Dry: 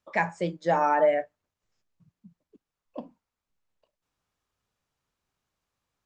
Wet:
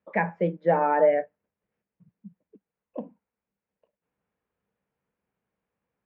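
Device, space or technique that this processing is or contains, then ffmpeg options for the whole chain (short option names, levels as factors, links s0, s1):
bass cabinet: -af "highpass=65,equalizer=f=95:t=q:w=4:g=-5,equalizer=f=200:t=q:w=4:g=9,equalizer=f=470:t=q:w=4:g=8,equalizer=f=1200:t=q:w=4:g=-5,lowpass=f=2400:w=0.5412,lowpass=f=2400:w=1.3066"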